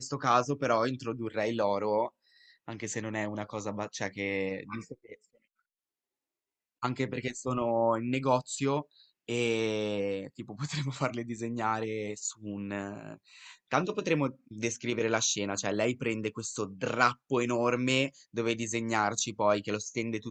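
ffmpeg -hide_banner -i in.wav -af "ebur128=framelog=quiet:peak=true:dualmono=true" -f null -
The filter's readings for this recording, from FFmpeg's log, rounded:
Integrated loudness:
  I:         -28.3 LUFS
  Threshold: -38.7 LUFS
Loudness range:
  LRA:         7.5 LU
  Threshold: -49.4 LUFS
  LRA low:   -34.3 LUFS
  LRA high:  -26.8 LUFS
True peak:
  Peak:       -8.1 dBFS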